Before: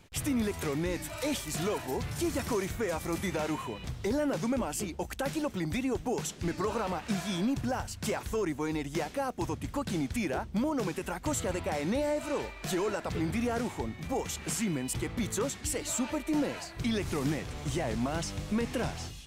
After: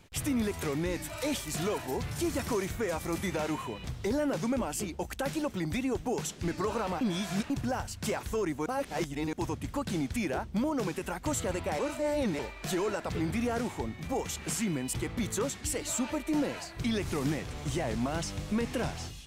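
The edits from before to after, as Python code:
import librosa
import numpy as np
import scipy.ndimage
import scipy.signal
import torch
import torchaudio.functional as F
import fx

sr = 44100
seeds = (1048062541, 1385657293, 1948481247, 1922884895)

y = fx.edit(x, sr, fx.reverse_span(start_s=7.01, length_s=0.49),
    fx.reverse_span(start_s=8.66, length_s=0.67),
    fx.reverse_span(start_s=11.79, length_s=0.6), tone=tone)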